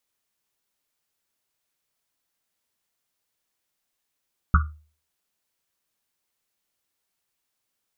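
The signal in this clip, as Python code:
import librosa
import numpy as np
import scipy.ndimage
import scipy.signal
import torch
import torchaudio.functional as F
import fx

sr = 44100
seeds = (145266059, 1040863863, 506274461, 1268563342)

y = fx.risset_drum(sr, seeds[0], length_s=1.1, hz=76.0, decay_s=0.4, noise_hz=1300.0, noise_width_hz=280.0, noise_pct=30)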